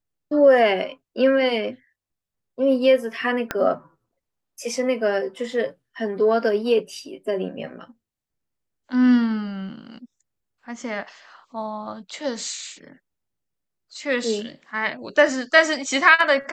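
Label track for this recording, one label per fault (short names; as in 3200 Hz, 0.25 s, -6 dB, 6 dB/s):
3.510000	3.510000	pop -9 dBFS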